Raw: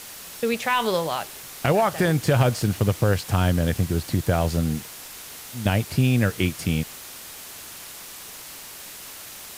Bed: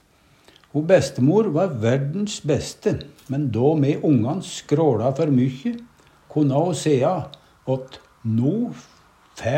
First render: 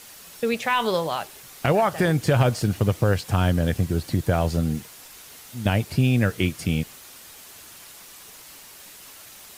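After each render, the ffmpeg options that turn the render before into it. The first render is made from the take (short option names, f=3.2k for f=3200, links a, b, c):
-af "afftdn=nr=6:nf=-40"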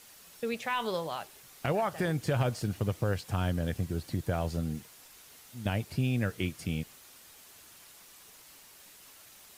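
-af "volume=-9.5dB"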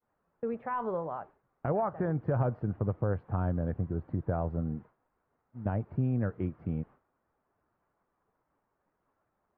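-af "agate=range=-33dB:threshold=-44dB:ratio=3:detection=peak,lowpass=f=1.3k:w=0.5412,lowpass=f=1.3k:w=1.3066"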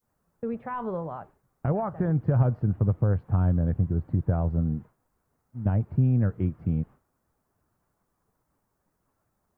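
-af "bass=f=250:g=9,treble=f=4k:g=13"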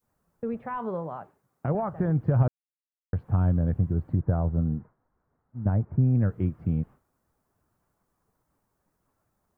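-filter_complex "[0:a]asettb=1/sr,asplit=3[a][b][c];[a]atrim=end=0.774[d];[b]atrim=start=0.77:end=1.75,asetpts=PTS-STARTPTS,afade=t=in:d=0.004:c=qsin,afade=t=out:st=0.976:d=0.004:c=qsin,highpass=120[e];[c]atrim=start=1.746[f];[d][e]acrossfade=d=0.004:c1=hsin:c2=qsin[g];[g][f]acrossfade=d=0.004:c1=qsin:c2=hsin,asettb=1/sr,asplit=3[h][i][j];[h]atrim=end=4.154[k];[i]atrim=start=4.15:end=6.15,asetpts=PTS-STARTPTS,afade=t=in:d=0.004:c=qsin,afade=t=out:st=1.996:d=0.004:c=qsin,lowpass=f=1.9k:w=0.5412,lowpass=f=1.9k:w=1.3066[l];[j]atrim=start=6.146[m];[k][l]acrossfade=d=0.004:c1=hsin:c2=qsin[n];[n][m]acrossfade=d=0.004:c1=qsin:c2=hsin,asplit=3[o][p][q];[o]atrim=end=2.48,asetpts=PTS-STARTPTS,afade=t=out:st=2.476:d=0.004:c=hsin[r];[p]atrim=start=2.48:end=3.13,asetpts=PTS-STARTPTS,volume=0[s];[q]atrim=start=3.13,asetpts=PTS-STARTPTS,afade=t=in:d=0.004:c=hsin[t];[r][s][t]concat=n=3:v=0:a=1"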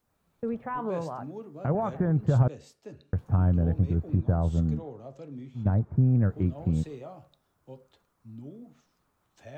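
-filter_complex "[1:a]volume=-23.5dB[a];[0:a][a]amix=inputs=2:normalize=0"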